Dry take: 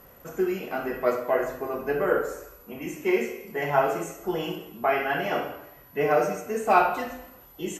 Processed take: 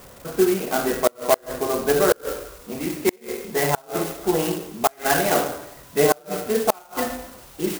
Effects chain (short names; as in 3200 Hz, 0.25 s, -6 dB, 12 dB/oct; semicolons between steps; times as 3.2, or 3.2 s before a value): flipped gate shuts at -13 dBFS, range -33 dB; clock jitter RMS 0.075 ms; gain +7.5 dB